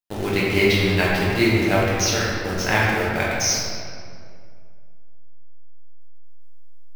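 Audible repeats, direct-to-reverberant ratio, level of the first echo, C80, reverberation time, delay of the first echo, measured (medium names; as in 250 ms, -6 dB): no echo, -6.0 dB, no echo, 0.5 dB, 2.2 s, no echo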